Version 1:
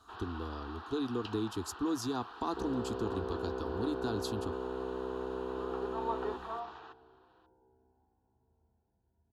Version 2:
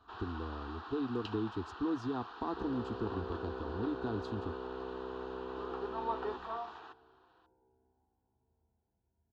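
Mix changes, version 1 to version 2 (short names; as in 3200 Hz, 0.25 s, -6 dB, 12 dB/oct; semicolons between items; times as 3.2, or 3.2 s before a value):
speech: add tape spacing loss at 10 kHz 32 dB; second sound -4.5 dB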